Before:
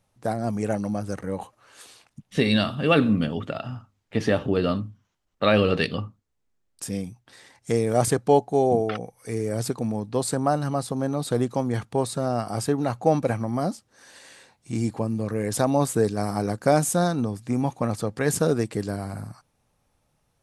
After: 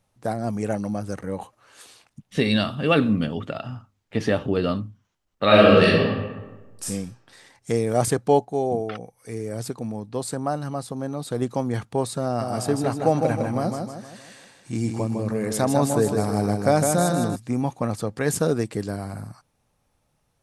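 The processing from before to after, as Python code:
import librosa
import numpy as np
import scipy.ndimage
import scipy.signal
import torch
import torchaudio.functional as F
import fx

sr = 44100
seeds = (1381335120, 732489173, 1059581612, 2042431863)

y = fx.reverb_throw(x, sr, start_s=5.45, length_s=1.4, rt60_s=1.2, drr_db=-6.5)
y = fx.echo_feedback(y, sr, ms=156, feedback_pct=45, wet_db=-5.0, at=(12.25, 17.36))
y = fx.edit(y, sr, fx.clip_gain(start_s=8.45, length_s=2.97, db=-3.5), tone=tone)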